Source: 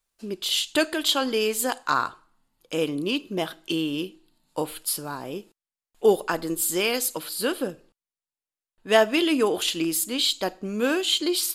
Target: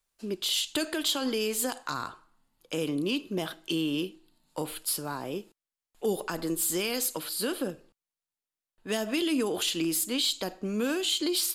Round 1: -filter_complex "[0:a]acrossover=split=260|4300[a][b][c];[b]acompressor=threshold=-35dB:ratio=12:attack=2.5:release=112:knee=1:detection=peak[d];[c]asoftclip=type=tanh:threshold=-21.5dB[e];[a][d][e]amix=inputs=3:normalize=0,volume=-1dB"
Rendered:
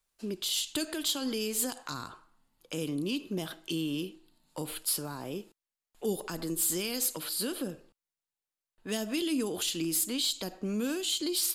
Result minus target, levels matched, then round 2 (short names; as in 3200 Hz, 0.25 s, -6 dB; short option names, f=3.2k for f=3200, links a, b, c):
compressor: peak gain reduction +7.5 dB
-filter_complex "[0:a]acrossover=split=260|4300[a][b][c];[b]acompressor=threshold=-27dB:ratio=12:attack=2.5:release=112:knee=1:detection=peak[d];[c]asoftclip=type=tanh:threshold=-21.5dB[e];[a][d][e]amix=inputs=3:normalize=0,volume=-1dB"